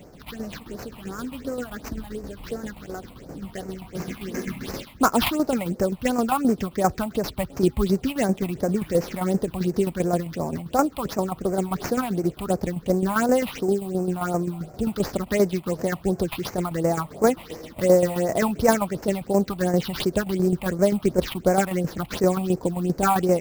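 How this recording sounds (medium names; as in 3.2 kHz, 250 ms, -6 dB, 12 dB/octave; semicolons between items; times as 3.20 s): aliases and images of a low sample rate 8.4 kHz, jitter 20%; phasing stages 6, 2.8 Hz, lowest notch 410–3400 Hz; tremolo saw down 7.6 Hz, depth 60%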